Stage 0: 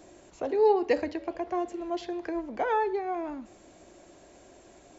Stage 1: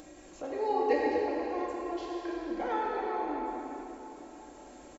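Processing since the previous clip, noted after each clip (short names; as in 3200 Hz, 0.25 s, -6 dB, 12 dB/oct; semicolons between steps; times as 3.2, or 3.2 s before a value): comb 3.7 ms, depth 45%; plate-style reverb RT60 3.6 s, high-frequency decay 0.85×, DRR -5 dB; upward compressor, threshold -35 dBFS; gain -8.5 dB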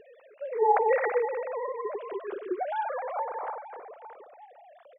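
sine-wave speech; gain +3 dB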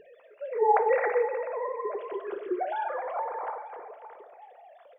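two-slope reverb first 0.59 s, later 2.5 s, from -15 dB, DRR 8.5 dB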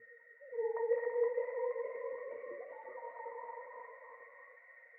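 band noise 1400–2100 Hz -44 dBFS; octave resonator A#, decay 0.15 s; echoes that change speed 0.513 s, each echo +1 st, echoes 3, each echo -6 dB; gain -1 dB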